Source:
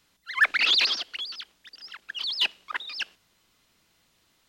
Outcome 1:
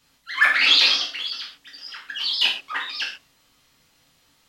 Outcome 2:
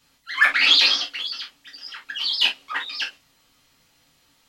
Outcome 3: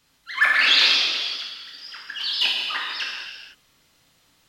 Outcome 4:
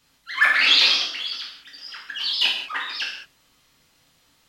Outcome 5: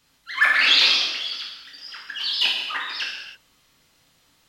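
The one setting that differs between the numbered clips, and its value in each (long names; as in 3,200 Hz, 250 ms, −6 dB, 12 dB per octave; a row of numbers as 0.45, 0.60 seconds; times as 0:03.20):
reverb whose tail is shaped and stops, gate: 160, 90, 530, 240, 350 milliseconds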